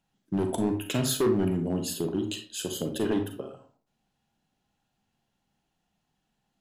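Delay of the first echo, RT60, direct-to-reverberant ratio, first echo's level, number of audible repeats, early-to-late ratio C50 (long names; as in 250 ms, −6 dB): no echo audible, 0.45 s, 5.0 dB, no echo audible, no echo audible, 8.0 dB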